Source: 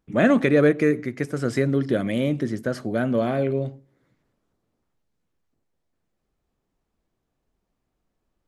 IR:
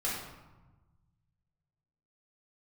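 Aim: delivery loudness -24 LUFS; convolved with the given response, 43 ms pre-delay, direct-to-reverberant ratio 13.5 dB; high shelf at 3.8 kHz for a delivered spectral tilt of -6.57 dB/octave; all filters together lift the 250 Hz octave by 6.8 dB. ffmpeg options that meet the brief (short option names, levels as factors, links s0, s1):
-filter_complex "[0:a]equalizer=f=250:t=o:g=8,highshelf=f=3800:g=-5.5,asplit=2[s0][s1];[1:a]atrim=start_sample=2205,adelay=43[s2];[s1][s2]afir=irnorm=-1:irlink=0,volume=0.106[s3];[s0][s3]amix=inputs=2:normalize=0,volume=0.501"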